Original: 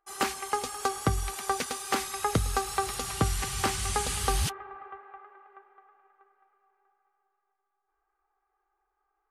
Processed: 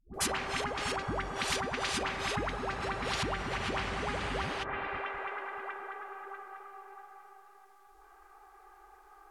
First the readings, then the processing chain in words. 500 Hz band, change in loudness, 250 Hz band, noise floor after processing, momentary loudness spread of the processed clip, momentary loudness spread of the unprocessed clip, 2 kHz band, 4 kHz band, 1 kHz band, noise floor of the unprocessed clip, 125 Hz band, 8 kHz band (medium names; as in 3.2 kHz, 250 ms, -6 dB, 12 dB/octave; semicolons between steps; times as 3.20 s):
-1.5 dB, -5.0 dB, -3.0 dB, -59 dBFS, 15 LU, 15 LU, +2.0 dB, -1.5 dB, -3.5 dB, -80 dBFS, -8.0 dB, -8.5 dB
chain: phase dispersion highs, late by 142 ms, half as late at 470 Hz; low-pass that closes with the level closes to 690 Hz, closed at -27.5 dBFS; spectrum-flattening compressor 4:1; trim -5 dB